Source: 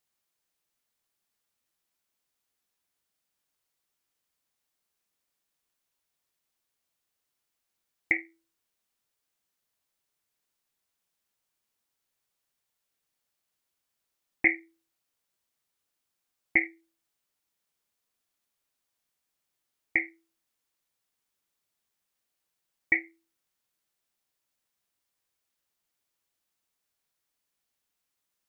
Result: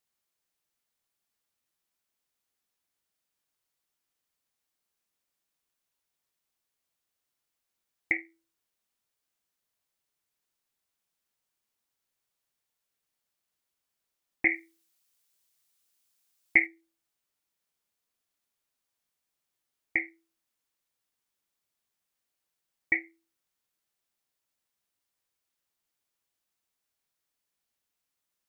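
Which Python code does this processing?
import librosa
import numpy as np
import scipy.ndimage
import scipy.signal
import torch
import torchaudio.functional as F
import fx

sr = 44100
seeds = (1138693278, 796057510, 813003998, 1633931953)

y = fx.high_shelf(x, sr, hz=2600.0, db=11.5, at=(14.5, 16.65), fade=0.02)
y = y * 10.0 ** (-2.0 / 20.0)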